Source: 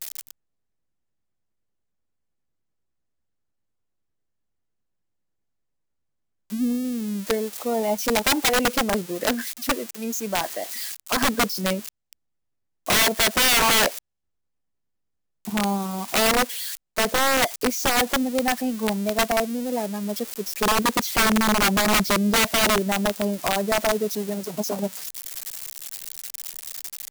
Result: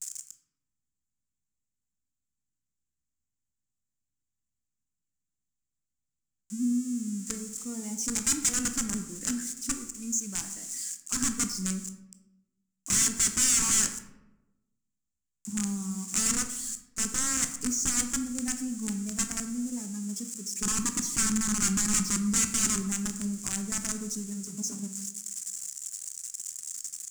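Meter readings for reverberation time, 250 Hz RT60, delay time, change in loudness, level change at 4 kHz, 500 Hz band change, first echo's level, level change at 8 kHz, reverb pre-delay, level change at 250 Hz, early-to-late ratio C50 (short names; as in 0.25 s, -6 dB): 1.0 s, 1.2 s, none, -6.0 dB, -12.0 dB, -24.0 dB, none, +2.5 dB, 14 ms, -6.0 dB, 10.0 dB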